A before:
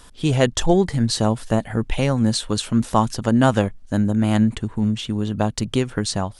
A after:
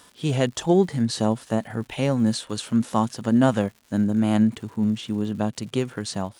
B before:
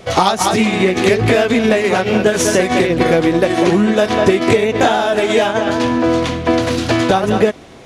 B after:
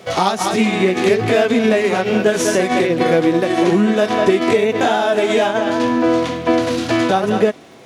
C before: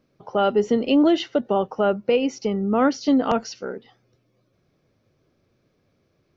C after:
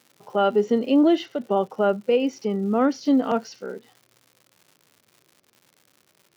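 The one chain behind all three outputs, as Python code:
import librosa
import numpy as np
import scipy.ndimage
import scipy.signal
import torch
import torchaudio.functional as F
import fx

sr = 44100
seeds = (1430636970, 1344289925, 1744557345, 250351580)

y = fx.dmg_crackle(x, sr, seeds[0], per_s=210.0, level_db=-38.0)
y = fx.hpss(y, sr, part='harmonic', gain_db=7)
y = scipy.signal.sosfilt(scipy.signal.butter(2, 150.0, 'highpass', fs=sr, output='sos'), y)
y = F.gain(torch.from_numpy(y), -7.0).numpy()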